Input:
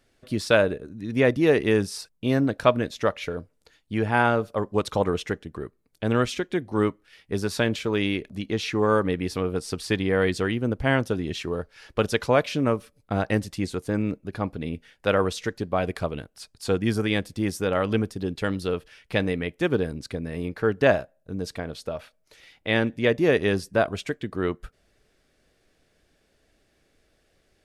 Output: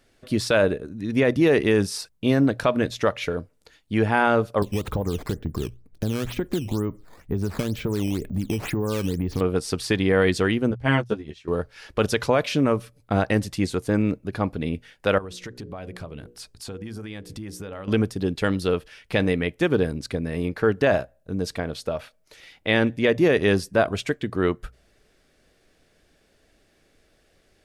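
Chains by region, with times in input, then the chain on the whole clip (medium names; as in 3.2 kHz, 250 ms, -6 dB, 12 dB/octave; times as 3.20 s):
4.62–9.41 s: tilt EQ -3.5 dB/octave + compression 8:1, threshold -24 dBFS + decimation with a swept rate 9×, swing 160% 2.1 Hz
10.71–11.48 s: low-pass 10 kHz + doubling 14 ms -3 dB + upward expansion 2.5:1, over -36 dBFS
15.18–17.88 s: hum notches 60/120/180/240/300/360/420/480/540 Hz + compression 5:1, threshold -39 dBFS + bass shelf 170 Hz +5 dB
whole clip: hum notches 60/120 Hz; loudness maximiser +11.5 dB; trim -7.5 dB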